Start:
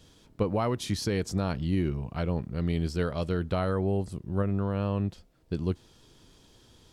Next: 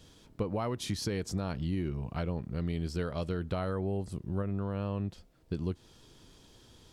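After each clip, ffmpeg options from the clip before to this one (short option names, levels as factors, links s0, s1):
-af "acompressor=threshold=0.0282:ratio=2.5"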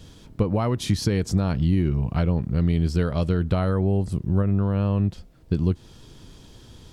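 -af "bass=f=250:g=6,treble=f=4000:g=-1,volume=2.37"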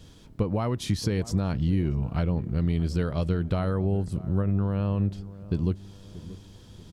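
-filter_complex "[0:a]asplit=2[s0][s1];[s1]adelay=634,lowpass=f=950:p=1,volume=0.158,asplit=2[s2][s3];[s3]adelay=634,lowpass=f=950:p=1,volume=0.5,asplit=2[s4][s5];[s5]adelay=634,lowpass=f=950:p=1,volume=0.5,asplit=2[s6][s7];[s7]adelay=634,lowpass=f=950:p=1,volume=0.5[s8];[s0][s2][s4][s6][s8]amix=inputs=5:normalize=0,volume=0.631"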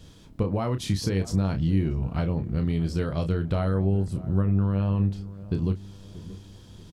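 -filter_complex "[0:a]asplit=2[s0][s1];[s1]adelay=31,volume=0.398[s2];[s0][s2]amix=inputs=2:normalize=0"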